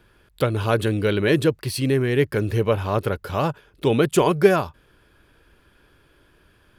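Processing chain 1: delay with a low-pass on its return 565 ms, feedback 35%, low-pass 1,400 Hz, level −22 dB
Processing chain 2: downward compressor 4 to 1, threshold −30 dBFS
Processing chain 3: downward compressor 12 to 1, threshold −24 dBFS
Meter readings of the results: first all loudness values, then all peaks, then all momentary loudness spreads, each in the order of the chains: −21.5, −32.5, −29.5 LKFS; −2.5, −18.0, −14.5 dBFS; 9, 4, 4 LU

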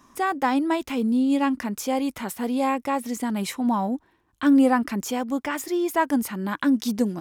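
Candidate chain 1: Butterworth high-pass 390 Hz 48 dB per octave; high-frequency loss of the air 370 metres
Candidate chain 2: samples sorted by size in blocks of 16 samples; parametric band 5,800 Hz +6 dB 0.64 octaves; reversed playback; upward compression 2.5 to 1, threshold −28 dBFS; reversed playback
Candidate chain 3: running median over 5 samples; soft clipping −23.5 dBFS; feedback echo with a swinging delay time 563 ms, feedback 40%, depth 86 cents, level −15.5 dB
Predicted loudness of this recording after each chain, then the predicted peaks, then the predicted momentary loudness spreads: −31.0, −23.0, −29.0 LKFS; −12.0, −7.0, −22.0 dBFS; 10, 7, 5 LU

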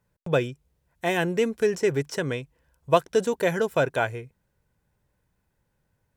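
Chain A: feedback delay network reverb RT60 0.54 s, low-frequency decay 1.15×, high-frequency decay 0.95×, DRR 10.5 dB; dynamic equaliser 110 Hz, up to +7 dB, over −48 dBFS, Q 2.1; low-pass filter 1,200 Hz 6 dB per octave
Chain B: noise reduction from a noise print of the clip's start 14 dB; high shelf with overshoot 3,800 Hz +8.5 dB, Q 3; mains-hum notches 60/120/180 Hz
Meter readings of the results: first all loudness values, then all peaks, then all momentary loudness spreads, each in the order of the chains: −26.0, −26.0 LKFS; −7.5, −5.5 dBFS; 10, 9 LU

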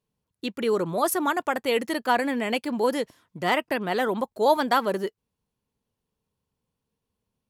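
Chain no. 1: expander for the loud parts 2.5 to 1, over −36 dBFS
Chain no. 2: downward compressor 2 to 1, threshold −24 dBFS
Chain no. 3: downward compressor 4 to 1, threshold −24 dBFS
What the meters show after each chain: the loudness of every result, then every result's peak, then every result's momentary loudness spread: −32.5, −28.0, −29.5 LKFS; −8.0, −12.5, −14.0 dBFS; 16, 6, 6 LU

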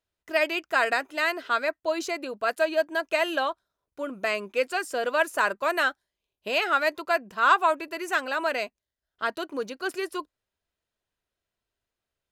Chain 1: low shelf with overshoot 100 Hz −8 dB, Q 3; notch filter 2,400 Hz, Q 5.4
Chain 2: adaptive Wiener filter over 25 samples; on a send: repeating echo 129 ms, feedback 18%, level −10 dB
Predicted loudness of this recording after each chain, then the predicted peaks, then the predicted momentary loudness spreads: −27.0, −27.5 LKFS; −8.5, −8.5 dBFS; 9, 12 LU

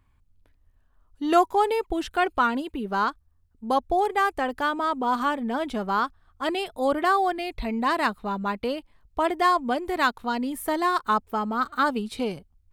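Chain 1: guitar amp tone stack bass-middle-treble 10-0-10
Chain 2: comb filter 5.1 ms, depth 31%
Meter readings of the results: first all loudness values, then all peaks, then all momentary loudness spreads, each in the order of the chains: −35.0, −25.0 LKFS; −15.0, −7.5 dBFS; 9, 9 LU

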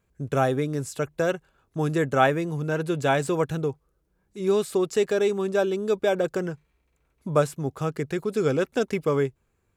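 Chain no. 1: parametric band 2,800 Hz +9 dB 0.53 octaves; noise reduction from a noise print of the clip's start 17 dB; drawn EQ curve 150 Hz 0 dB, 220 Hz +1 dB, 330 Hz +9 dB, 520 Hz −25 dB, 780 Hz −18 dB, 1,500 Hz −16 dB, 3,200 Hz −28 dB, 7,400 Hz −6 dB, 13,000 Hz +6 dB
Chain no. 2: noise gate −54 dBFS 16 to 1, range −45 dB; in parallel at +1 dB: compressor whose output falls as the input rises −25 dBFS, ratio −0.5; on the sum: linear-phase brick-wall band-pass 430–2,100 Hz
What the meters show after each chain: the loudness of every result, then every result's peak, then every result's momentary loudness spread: −28.5, −25.5 LKFS; −10.5, −6.5 dBFS; 8, 9 LU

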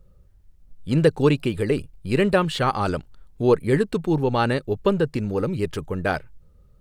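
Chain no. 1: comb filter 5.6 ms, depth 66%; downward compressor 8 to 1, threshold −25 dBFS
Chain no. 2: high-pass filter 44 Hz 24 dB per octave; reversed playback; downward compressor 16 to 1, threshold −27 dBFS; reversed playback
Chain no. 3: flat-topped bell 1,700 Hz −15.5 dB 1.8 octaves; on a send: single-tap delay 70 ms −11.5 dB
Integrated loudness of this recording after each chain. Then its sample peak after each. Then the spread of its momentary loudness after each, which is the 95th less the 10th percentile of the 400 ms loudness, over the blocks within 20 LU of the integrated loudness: −30.5, −33.0, −23.0 LKFS; −15.0, −17.0, −5.0 dBFS; 4, 4, 8 LU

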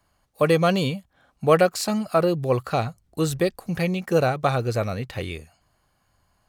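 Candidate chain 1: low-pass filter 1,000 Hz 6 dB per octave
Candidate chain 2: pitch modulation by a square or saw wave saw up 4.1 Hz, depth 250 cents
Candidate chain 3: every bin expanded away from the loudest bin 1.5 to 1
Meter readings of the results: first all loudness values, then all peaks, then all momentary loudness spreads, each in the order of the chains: −24.5, −23.0, −24.5 LKFS; −6.5, −4.0, −4.0 dBFS; 12, 12, 17 LU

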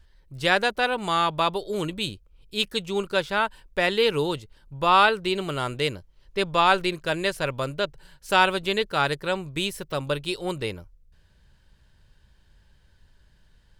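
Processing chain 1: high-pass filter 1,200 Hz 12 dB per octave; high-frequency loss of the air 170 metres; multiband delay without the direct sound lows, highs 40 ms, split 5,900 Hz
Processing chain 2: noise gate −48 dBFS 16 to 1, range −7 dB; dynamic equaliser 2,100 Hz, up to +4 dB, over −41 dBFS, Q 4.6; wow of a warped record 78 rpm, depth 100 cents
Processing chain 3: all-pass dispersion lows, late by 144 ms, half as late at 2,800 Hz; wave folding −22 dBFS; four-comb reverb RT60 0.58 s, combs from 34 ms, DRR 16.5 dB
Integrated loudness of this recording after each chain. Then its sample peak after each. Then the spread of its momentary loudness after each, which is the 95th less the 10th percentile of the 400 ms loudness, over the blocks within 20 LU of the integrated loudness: −30.0, −24.5, −28.5 LKFS; −10.5, −4.0, −20.0 dBFS; 13, 11, 8 LU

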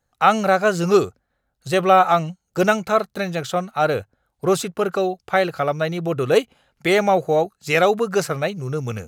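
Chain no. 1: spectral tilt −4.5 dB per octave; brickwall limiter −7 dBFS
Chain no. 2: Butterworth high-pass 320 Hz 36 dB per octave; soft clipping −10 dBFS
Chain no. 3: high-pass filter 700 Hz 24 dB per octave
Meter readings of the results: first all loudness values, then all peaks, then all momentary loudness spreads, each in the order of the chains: −17.0, −22.5, −23.5 LKFS; −7.0, −10.0, −3.0 dBFS; 5, 8, 12 LU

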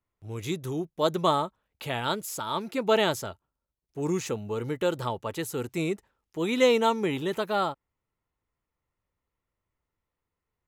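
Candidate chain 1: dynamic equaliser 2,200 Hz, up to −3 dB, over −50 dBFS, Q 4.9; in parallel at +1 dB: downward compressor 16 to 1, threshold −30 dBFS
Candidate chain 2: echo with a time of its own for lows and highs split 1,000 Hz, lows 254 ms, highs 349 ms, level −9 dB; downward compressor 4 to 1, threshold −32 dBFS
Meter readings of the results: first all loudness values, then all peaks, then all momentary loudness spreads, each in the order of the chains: −25.5, −35.5 LKFS; −7.5, −20.0 dBFS; 11, 6 LU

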